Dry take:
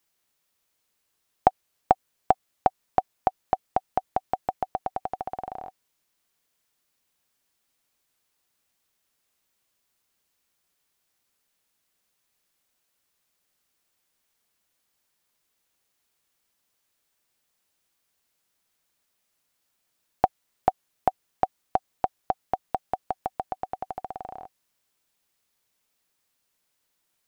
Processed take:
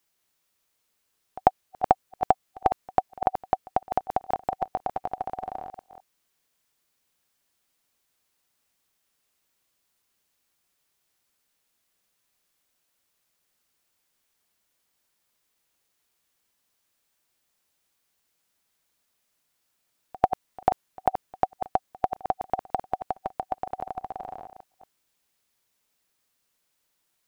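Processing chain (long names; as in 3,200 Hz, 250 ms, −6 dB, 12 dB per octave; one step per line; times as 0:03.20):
delay that plays each chunk backwards 207 ms, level −8.5 dB
echo ahead of the sound 94 ms −22.5 dB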